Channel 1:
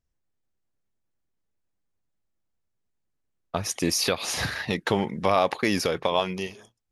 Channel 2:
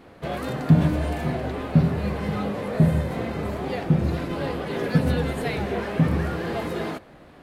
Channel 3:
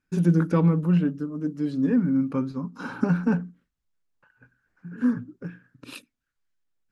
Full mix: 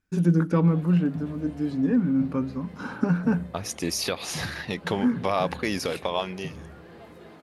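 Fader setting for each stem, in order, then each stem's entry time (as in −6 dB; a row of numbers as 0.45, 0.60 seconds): −3.5, −18.5, −0.5 decibels; 0.00, 0.45, 0.00 seconds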